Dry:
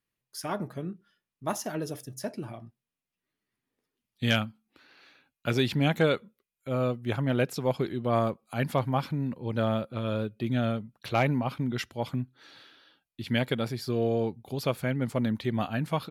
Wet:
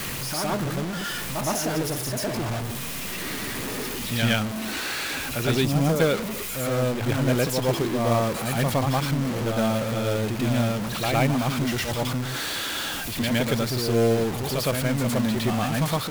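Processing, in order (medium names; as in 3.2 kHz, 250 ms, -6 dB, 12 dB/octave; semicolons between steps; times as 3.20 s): jump at every zero crossing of -26 dBFS; reverse echo 113 ms -4 dB; time-frequency box 5.65–6.00 s, 1.4–4.6 kHz -11 dB; short-mantissa float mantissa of 2-bit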